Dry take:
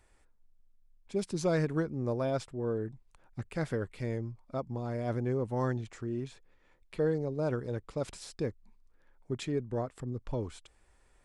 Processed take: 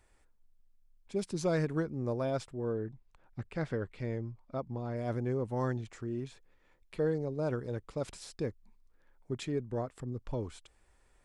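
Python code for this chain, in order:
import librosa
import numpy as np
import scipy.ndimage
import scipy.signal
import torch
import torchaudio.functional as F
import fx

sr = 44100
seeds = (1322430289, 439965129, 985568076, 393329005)

y = fx.bessel_lowpass(x, sr, hz=4500.0, order=2, at=(2.72, 4.97))
y = y * librosa.db_to_amplitude(-1.5)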